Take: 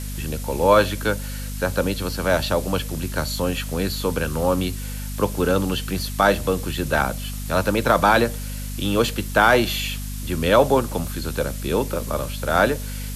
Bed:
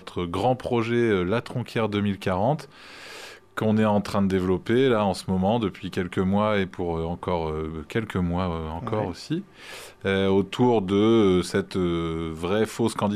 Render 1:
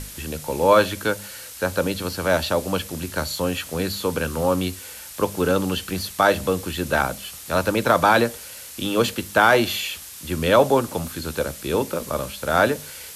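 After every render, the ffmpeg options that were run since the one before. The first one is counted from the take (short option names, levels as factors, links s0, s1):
-af "bandreject=f=50:t=h:w=6,bandreject=f=100:t=h:w=6,bandreject=f=150:t=h:w=6,bandreject=f=200:t=h:w=6,bandreject=f=250:t=h:w=6"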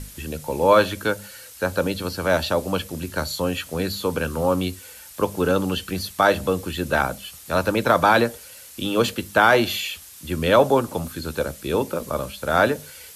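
-af "afftdn=nr=6:nf=-39"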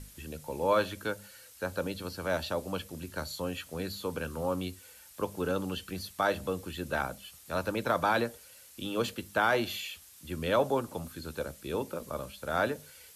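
-af "volume=0.282"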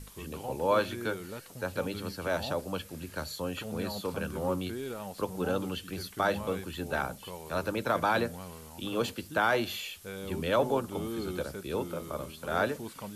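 -filter_complex "[1:a]volume=0.126[s0];[0:a][s0]amix=inputs=2:normalize=0"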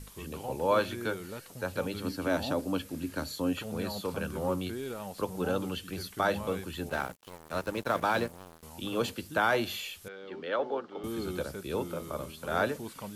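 -filter_complex "[0:a]asettb=1/sr,asplit=3[s0][s1][s2];[s0]atrim=end=2.044[s3];[s1]atrim=start=2.04:end=3.53,asetpts=PTS-STARTPTS,afade=t=in:d=0.004:c=qsin,afade=t=out:st=1.486:d=0.004:c=qsin,equalizer=f=280:t=o:w=0.39:g=12[s4];[s2]atrim=start=3.526[s5];[s3][s4]acrossfade=d=0.004:c1=hsin:c2=qsin[s6];[s6][s5]acrossfade=d=0.004:c1=qsin:c2=hsin,asettb=1/sr,asplit=3[s7][s8][s9];[s7]atrim=end=6.894[s10];[s8]atrim=start=6.89:end=8.63,asetpts=PTS-STARTPTS,afade=t=in:d=0.004:c=qsin,afade=t=out:st=1.736:d=0.004:c=qsin,aeval=exprs='sgn(val(0))*max(abs(val(0))-0.0075,0)':c=same[s11];[s9]atrim=start=8.626[s12];[s10][s11]acrossfade=d=0.004:c1=hsin:c2=qsin[s13];[s13][s12]acrossfade=d=0.004:c1=qsin:c2=hsin,asettb=1/sr,asplit=3[s14][s15][s16];[s14]atrim=end=10.084[s17];[s15]atrim=start=10.08:end=11.04,asetpts=PTS-STARTPTS,afade=t=in:d=0.004:c=qsin,afade=t=out:st=0.956:d=0.004:c=qsin,highpass=430,equalizer=f=630:t=q:w=4:g=-5,equalizer=f=990:t=q:w=4:g=-7,equalizer=f=2500:t=q:w=4:g=-8,equalizer=f=3600:t=q:w=4:g=-5,lowpass=f=3800:w=0.5412,lowpass=f=3800:w=1.3066[s18];[s16]atrim=start=11.036[s19];[s17][s18]acrossfade=d=0.004:c1=hsin:c2=qsin[s20];[s20][s19]acrossfade=d=0.004:c1=qsin:c2=hsin"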